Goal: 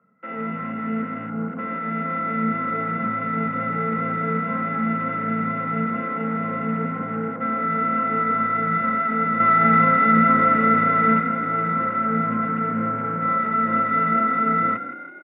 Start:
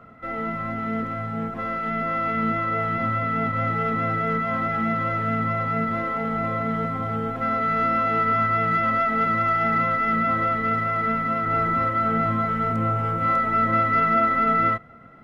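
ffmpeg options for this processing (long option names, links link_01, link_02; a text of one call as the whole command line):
ffmpeg -i in.wav -filter_complex "[0:a]afwtdn=0.0355,asettb=1/sr,asplit=3[link_01][link_02][link_03];[link_01]atrim=end=9.404[link_04];[link_02]atrim=start=9.4:end=11.2,asetpts=PTS-STARTPTS,afade=type=in:duration=0.004:curve=qsin,afade=type=out:start_time=1.796:duration=0.004:curve=qsin,acontrast=59[link_05];[link_03]atrim=start=11.196[link_06];[link_04][link_05]acrossfade=duration=0.004:curve1=hsin:curve2=qsin[link_07];[link_07][link_06]acrossfade=duration=0.004:curve1=qsin:curve2=hsin,highpass=frequency=150:width=0.5412,highpass=frequency=150:width=1.3066,equalizer=frequency=190:width_type=q:width=4:gain=9,equalizer=frequency=330:width_type=q:width=4:gain=-7,equalizer=frequency=480:width_type=q:width=4:gain=4,equalizer=frequency=700:width_type=q:width=4:gain=-9,lowpass=frequency=2200:width=0.5412,lowpass=frequency=2200:width=1.3066,asplit=7[link_08][link_09][link_10][link_11][link_12][link_13][link_14];[link_09]adelay=165,afreqshift=32,volume=-12dB[link_15];[link_10]adelay=330,afreqshift=64,volume=-17.4dB[link_16];[link_11]adelay=495,afreqshift=96,volume=-22.7dB[link_17];[link_12]adelay=660,afreqshift=128,volume=-28.1dB[link_18];[link_13]adelay=825,afreqshift=160,volume=-33.4dB[link_19];[link_14]adelay=990,afreqshift=192,volume=-38.8dB[link_20];[link_08][link_15][link_16][link_17][link_18][link_19][link_20]amix=inputs=7:normalize=0" out.wav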